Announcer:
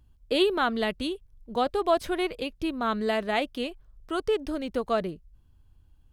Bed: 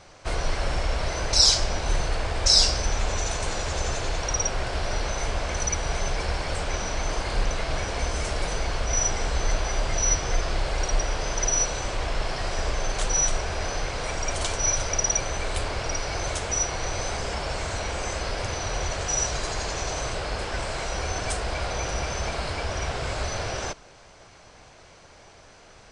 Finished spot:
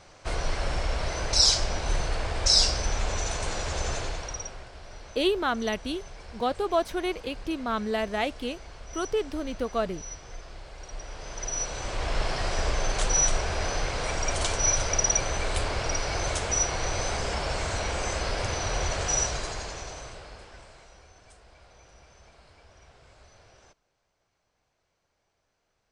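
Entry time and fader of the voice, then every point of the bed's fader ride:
4.85 s, -1.5 dB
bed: 3.98 s -2.5 dB
4.72 s -17.5 dB
10.78 s -17.5 dB
12.18 s 0 dB
19.15 s 0 dB
21.13 s -26 dB

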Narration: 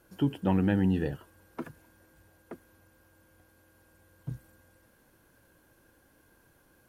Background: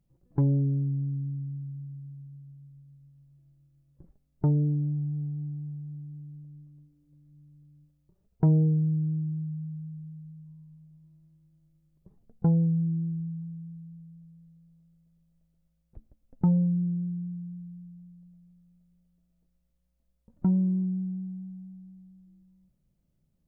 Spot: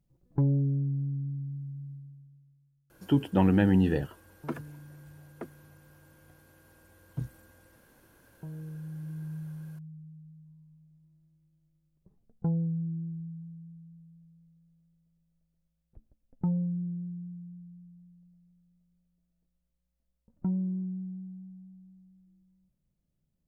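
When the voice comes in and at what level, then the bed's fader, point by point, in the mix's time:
2.90 s, +3.0 dB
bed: 1.91 s -1.5 dB
2.82 s -21 dB
8.51 s -21 dB
9.34 s -6 dB

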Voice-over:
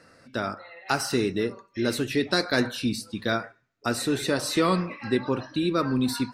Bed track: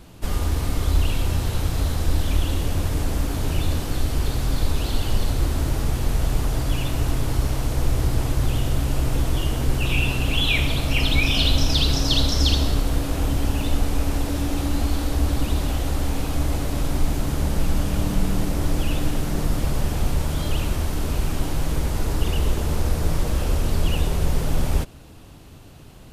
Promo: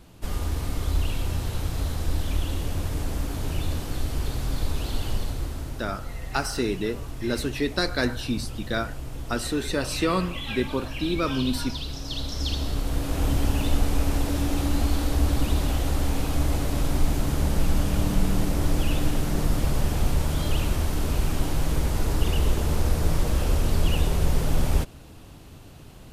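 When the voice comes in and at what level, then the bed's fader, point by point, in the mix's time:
5.45 s, -1.5 dB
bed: 5.08 s -5 dB
5.9 s -13.5 dB
12 s -13.5 dB
13.29 s -1 dB

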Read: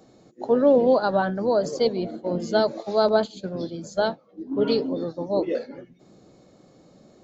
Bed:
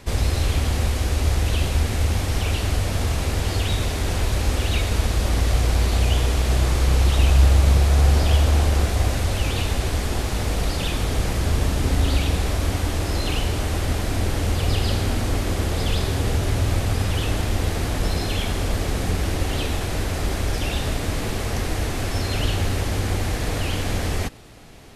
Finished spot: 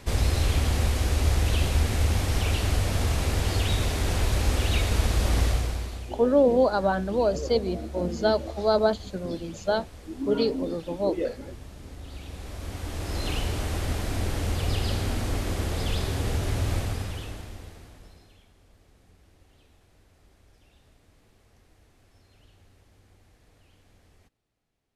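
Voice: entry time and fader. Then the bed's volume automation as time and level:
5.70 s, -2.0 dB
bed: 5.44 s -2.5 dB
6.18 s -22.5 dB
12.01 s -22.5 dB
13.26 s -5.5 dB
16.78 s -5.5 dB
18.51 s -35.5 dB

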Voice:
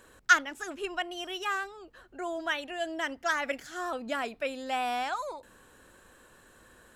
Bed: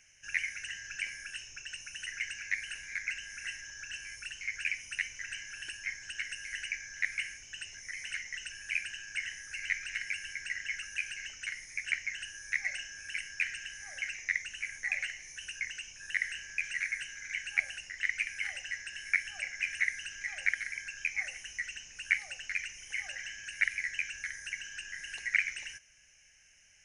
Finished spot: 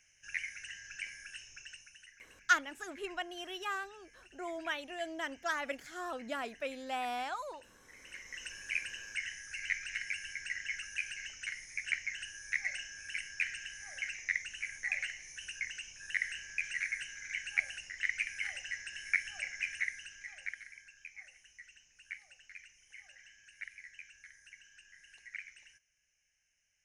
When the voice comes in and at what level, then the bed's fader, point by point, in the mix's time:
2.20 s, -6.0 dB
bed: 1.64 s -5.5 dB
2.19 s -20 dB
7.8 s -20 dB
8.46 s -2 dB
19.53 s -2 dB
21.01 s -16.5 dB

